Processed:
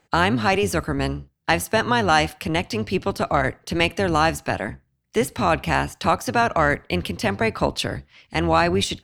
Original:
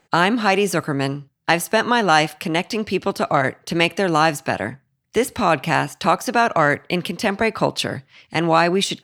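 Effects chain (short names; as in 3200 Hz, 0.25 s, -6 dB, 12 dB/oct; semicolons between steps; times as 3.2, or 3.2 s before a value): octaver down 1 oct, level -4 dB; gain -2.5 dB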